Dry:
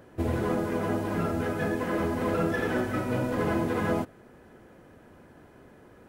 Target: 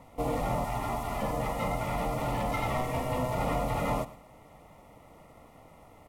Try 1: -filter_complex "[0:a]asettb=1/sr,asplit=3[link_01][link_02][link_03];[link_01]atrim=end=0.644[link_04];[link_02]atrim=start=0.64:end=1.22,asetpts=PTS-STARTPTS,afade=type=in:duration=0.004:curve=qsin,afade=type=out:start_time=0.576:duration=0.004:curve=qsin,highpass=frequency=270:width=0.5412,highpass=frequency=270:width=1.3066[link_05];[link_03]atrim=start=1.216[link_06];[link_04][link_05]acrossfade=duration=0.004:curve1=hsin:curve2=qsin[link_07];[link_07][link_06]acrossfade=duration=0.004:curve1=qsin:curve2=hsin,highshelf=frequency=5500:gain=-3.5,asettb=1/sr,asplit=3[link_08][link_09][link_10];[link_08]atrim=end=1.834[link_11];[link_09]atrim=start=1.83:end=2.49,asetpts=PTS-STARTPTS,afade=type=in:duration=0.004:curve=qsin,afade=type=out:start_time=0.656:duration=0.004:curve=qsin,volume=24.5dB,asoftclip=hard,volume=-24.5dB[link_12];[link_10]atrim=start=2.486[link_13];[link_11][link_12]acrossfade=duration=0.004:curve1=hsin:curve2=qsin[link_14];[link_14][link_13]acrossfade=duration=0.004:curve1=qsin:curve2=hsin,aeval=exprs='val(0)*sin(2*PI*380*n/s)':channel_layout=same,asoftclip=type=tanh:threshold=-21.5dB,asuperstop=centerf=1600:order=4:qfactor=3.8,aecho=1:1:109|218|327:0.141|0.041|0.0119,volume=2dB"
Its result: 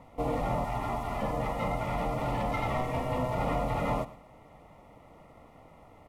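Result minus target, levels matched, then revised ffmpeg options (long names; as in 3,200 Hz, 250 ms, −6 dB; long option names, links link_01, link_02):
8,000 Hz band −7.0 dB
-filter_complex "[0:a]asettb=1/sr,asplit=3[link_01][link_02][link_03];[link_01]atrim=end=0.644[link_04];[link_02]atrim=start=0.64:end=1.22,asetpts=PTS-STARTPTS,afade=type=in:duration=0.004:curve=qsin,afade=type=out:start_time=0.576:duration=0.004:curve=qsin,highpass=frequency=270:width=0.5412,highpass=frequency=270:width=1.3066[link_05];[link_03]atrim=start=1.216[link_06];[link_04][link_05]acrossfade=duration=0.004:curve1=hsin:curve2=qsin[link_07];[link_07][link_06]acrossfade=duration=0.004:curve1=qsin:curve2=hsin,highshelf=frequency=5500:gain=7,asettb=1/sr,asplit=3[link_08][link_09][link_10];[link_08]atrim=end=1.834[link_11];[link_09]atrim=start=1.83:end=2.49,asetpts=PTS-STARTPTS,afade=type=in:duration=0.004:curve=qsin,afade=type=out:start_time=0.656:duration=0.004:curve=qsin,volume=24.5dB,asoftclip=hard,volume=-24.5dB[link_12];[link_10]atrim=start=2.486[link_13];[link_11][link_12]acrossfade=duration=0.004:curve1=hsin:curve2=qsin[link_14];[link_14][link_13]acrossfade=duration=0.004:curve1=qsin:curve2=hsin,aeval=exprs='val(0)*sin(2*PI*380*n/s)':channel_layout=same,asoftclip=type=tanh:threshold=-21.5dB,asuperstop=centerf=1600:order=4:qfactor=3.8,aecho=1:1:109|218|327:0.141|0.041|0.0119,volume=2dB"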